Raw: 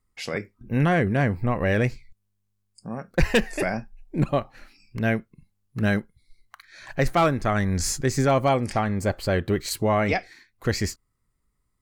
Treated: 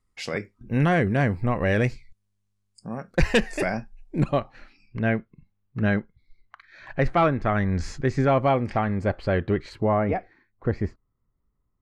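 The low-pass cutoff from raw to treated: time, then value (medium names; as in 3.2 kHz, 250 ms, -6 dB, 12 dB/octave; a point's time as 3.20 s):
4.21 s 9.5 kHz
4.41 s 5.5 kHz
5.02 s 2.7 kHz
9.53 s 2.7 kHz
10.09 s 1.1 kHz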